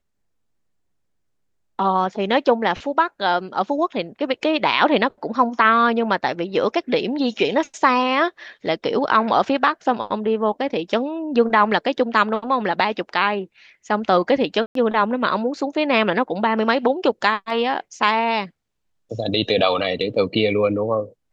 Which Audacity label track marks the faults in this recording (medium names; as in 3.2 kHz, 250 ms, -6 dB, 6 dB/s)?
14.660000	14.750000	dropout 93 ms